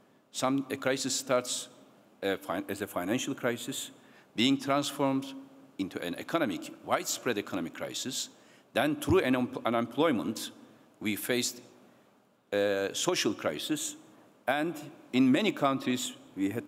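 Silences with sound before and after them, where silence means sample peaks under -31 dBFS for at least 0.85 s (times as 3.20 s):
11.50–12.53 s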